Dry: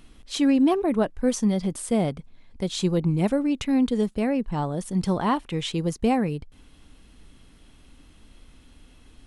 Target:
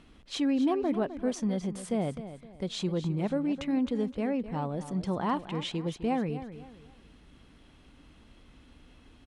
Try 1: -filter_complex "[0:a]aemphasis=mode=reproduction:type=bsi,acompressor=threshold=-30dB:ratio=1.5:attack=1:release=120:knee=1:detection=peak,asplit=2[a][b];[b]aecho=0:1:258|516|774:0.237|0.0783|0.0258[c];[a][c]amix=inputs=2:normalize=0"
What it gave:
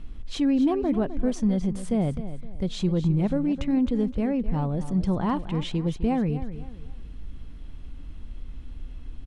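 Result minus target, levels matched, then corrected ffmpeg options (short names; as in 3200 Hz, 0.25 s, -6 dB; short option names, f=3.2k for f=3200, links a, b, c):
500 Hz band -3.0 dB
-filter_complex "[0:a]aemphasis=mode=reproduction:type=bsi,acompressor=threshold=-30dB:ratio=1.5:attack=1:release=120:knee=1:detection=peak,highpass=f=400:p=1,asplit=2[a][b];[b]aecho=0:1:258|516|774:0.237|0.0783|0.0258[c];[a][c]amix=inputs=2:normalize=0"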